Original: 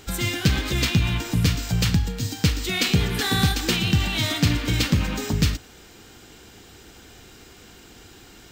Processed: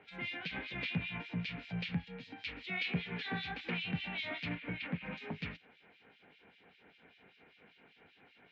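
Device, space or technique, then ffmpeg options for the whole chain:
guitar amplifier with harmonic tremolo: -filter_complex "[0:a]acrossover=split=260 3500:gain=0.178 1 0.178[a][b][c];[a][b][c]amix=inputs=3:normalize=0,asplit=3[d][e][f];[d]afade=t=out:st=4.54:d=0.02[g];[e]lowpass=2.4k,afade=t=in:st=4.54:d=0.02,afade=t=out:st=5.05:d=0.02[h];[f]afade=t=in:st=5.05:d=0.02[i];[g][h][i]amix=inputs=3:normalize=0,acrossover=split=2300[j][k];[j]aeval=exprs='val(0)*(1-1/2+1/2*cos(2*PI*5.1*n/s))':c=same[l];[k]aeval=exprs='val(0)*(1-1/2-1/2*cos(2*PI*5.1*n/s))':c=same[m];[l][m]amix=inputs=2:normalize=0,asoftclip=type=tanh:threshold=-21dB,highpass=110,equalizer=f=170:t=q:w=4:g=9,equalizer=f=340:t=q:w=4:g=-10,equalizer=f=1.2k:t=q:w=4:g=-6,equalizer=f=2.3k:t=q:w=4:g=8,lowpass=f=3.9k:w=0.5412,lowpass=f=3.9k:w=1.3066,lowshelf=f=68:g=8.5,volume=-7.5dB"

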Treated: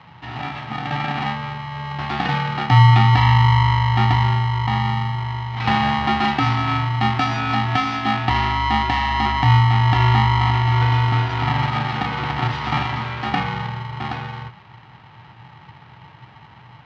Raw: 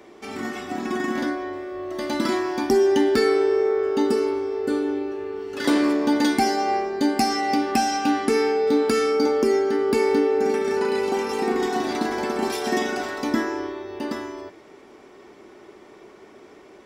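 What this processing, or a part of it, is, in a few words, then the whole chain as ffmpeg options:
ring modulator pedal into a guitar cabinet: -af "aeval=exprs='val(0)*sgn(sin(2*PI*510*n/s))':c=same,highpass=78,equalizer=f=120:t=q:w=4:g=10,equalizer=f=250:t=q:w=4:g=-7,equalizer=f=540:t=q:w=4:g=-4,lowpass=f=3.7k:w=0.5412,lowpass=f=3.7k:w=1.3066,volume=2dB"

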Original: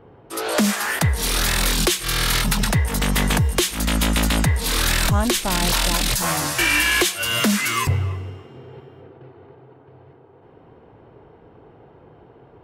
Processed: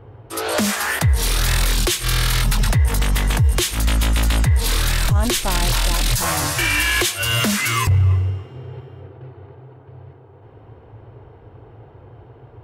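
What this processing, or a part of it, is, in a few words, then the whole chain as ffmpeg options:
car stereo with a boomy subwoofer: -af "lowshelf=f=140:t=q:w=3:g=6,alimiter=limit=-11.5dB:level=0:latency=1:release=31,volume=2dB"

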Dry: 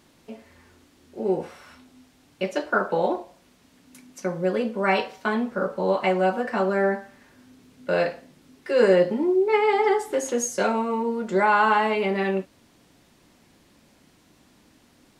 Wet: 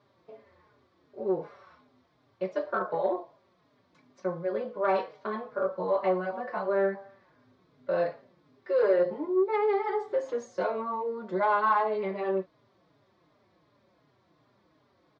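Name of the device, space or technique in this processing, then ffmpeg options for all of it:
barber-pole flanger into a guitar amplifier: -filter_complex "[0:a]asplit=2[a][b];[b]adelay=4.4,afreqshift=-2.7[c];[a][c]amix=inputs=2:normalize=1,asoftclip=type=tanh:threshold=-14.5dB,highpass=90,equalizer=f=120:t=q:w=4:g=8,equalizer=f=240:t=q:w=4:g=-7,equalizer=f=390:t=q:w=4:g=5,equalizer=f=600:t=q:w=4:g=8,equalizer=f=1.1k:t=q:w=4:g=9,equalizer=f=2.8k:t=q:w=4:g=-9,lowpass=f=4.4k:w=0.5412,lowpass=f=4.4k:w=1.3066,volume=-6.5dB"

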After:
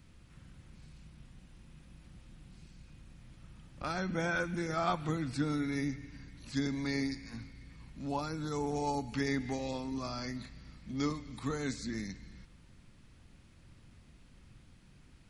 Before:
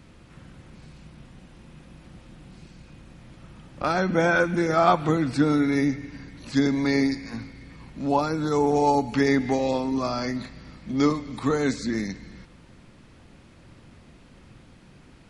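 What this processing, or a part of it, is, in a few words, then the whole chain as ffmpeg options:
smiley-face EQ: -af "lowshelf=f=98:g=6.5,equalizer=f=530:t=o:w=2.5:g=-6,highshelf=f=7.3k:g=5.5,volume=-9dB"

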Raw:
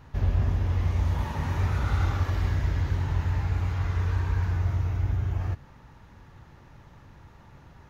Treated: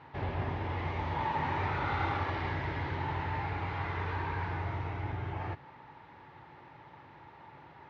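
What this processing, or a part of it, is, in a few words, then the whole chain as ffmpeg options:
kitchen radio: -af "highpass=170,equalizer=f=210:t=q:w=4:g=-9,equalizer=f=350:t=q:w=4:g=3,equalizer=f=870:t=q:w=4:g=8,equalizer=f=2.1k:t=q:w=4:g=5,lowpass=f=4k:w=0.5412,lowpass=f=4k:w=1.3066"

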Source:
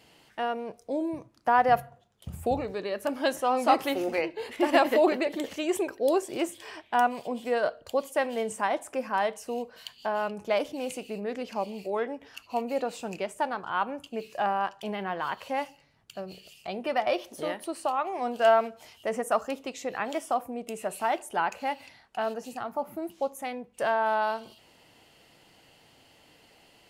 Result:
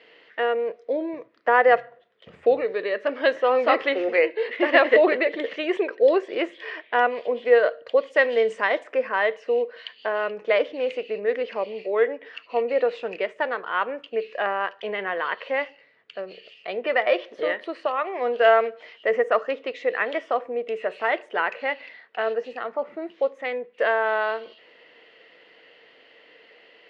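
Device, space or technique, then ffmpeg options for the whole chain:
phone earpiece: -filter_complex "[0:a]highpass=410,equalizer=f=470:t=q:w=4:g=10,equalizer=f=830:t=q:w=4:g=-9,equalizer=f=1.9k:t=q:w=4:g=9,lowpass=f=3.6k:w=0.5412,lowpass=f=3.6k:w=1.3066,asettb=1/sr,asplit=3[a][b][c];[a]atrim=end=8.104[d];[b]atrim=start=8.1:end=8.84,asetpts=PTS-STARTPTS,afade=t=in:d=0.004:c=qsin,afade=t=out:st=0.736:d=0.004:c=qsin,bass=f=250:g=3,treble=f=4k:g=11[e];[c]atrim=start=8.836[f];[d][e]acrossfade=d=0.004:c1=hsin:c2=qsin[g];[g][f]acrossfade=d=0.004:c1=qsin:c2=hsin,volume=5dB"

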